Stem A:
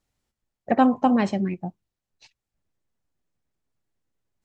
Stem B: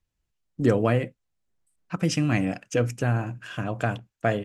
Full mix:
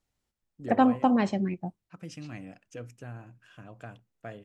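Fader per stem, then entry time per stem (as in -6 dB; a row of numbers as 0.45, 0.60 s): -3.5, -18.0 dB; 0.00, 0.00 s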